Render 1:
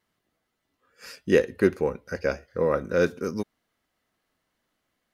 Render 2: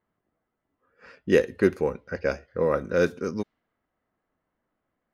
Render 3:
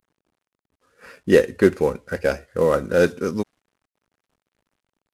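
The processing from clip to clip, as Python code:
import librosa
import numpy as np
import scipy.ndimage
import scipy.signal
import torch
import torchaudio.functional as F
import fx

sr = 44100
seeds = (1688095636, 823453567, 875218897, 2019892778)

y1 = fx.env_lowpass(x, sr, base_hz=1400.0, full_db=-20.0)
y2 = fx.cvsd(y1, sr, bps=64000)
y2 = y2 * 10.0 ** (5.5 / 20.0)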